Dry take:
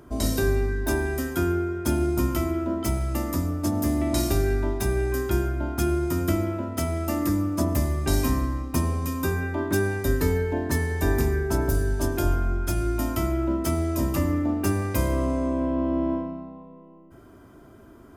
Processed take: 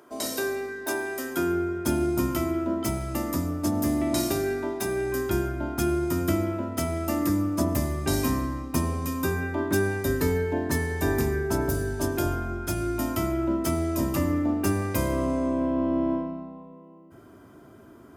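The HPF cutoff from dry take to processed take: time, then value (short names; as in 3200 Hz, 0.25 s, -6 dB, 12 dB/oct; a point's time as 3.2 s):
1.18 s 410 Hz
1.65 s 100 Hz
3.91 s 100 Hz
4.76 s 250 Hz
5.3 s 90 Hz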